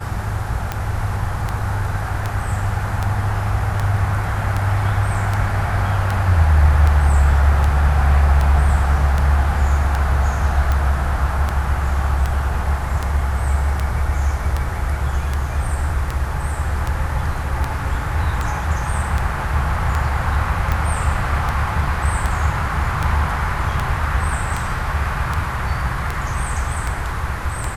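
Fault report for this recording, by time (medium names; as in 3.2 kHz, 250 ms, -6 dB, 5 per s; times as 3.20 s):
tick 78 rpm -8 dBFS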